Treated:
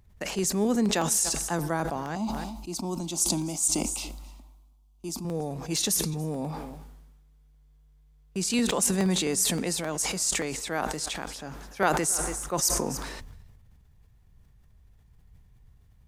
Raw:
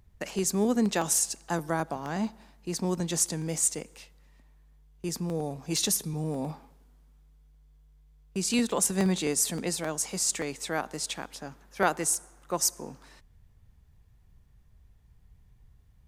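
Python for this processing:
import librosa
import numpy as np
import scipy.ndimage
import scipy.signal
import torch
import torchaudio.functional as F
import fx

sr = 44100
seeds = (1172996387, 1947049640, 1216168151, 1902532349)

y = fx.fixed_phaser(x, sr, hz=470.0, stages=6, at=(2.15, 5.25))
y = y + 10.0 ** (-23.5 / 20.0) * np.pad(y, (int(287 * sr / 1000.0), 0))[:len(y)]
y = fx.sustainer(y, sr, db_per_s=34.0)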